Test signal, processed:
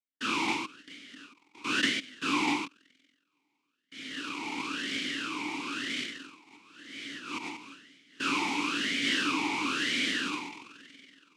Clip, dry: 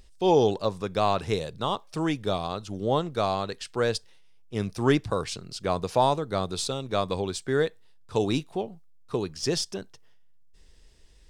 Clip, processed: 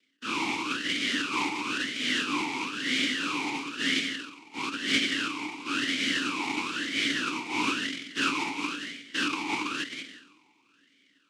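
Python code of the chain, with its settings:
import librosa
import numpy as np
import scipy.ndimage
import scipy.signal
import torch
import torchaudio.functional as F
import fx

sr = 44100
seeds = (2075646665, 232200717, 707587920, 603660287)

p1 = fx.lower_of_two(x, sr, delay_ms=0.35)
p2 = fx.rev_spring(p1, sr, rt60_s=3.1, pass_ms=(47,), chirp_ms=75, drr_db=18.0)
p3 = fx.filter_lfo_lowpass(p2, sr, shape='square', hz=0.61, low_hz=380.0, high_hz=2200.0, q=2.4)
p4 = fx.noise_vocoder(p3, sr, seeds[0], bands=1)
p5 = p4 + fx.echo_single(p4, sr, ms=185, db=-9.0, dry=0)
p6 = fx.rider(p5, sr, range_db=5, speed_s=0.5)
p7 = fx.transient(p6, sr, attack_db=-7, sustain_db=11)
p8 = 10.0 ** (-21.5 / 20.0) * np.tanh(p7 / 10.0 ** (-21.5 / 20.0))
p9 = p7 + (p8 * librosa.db_to_amplitude(-4.5))
p10 = fx.vowel_sweep(p9, sr, vowels='i-u', hz=1.0)
y = p10 * librosa.db_to_amplitude(7.5)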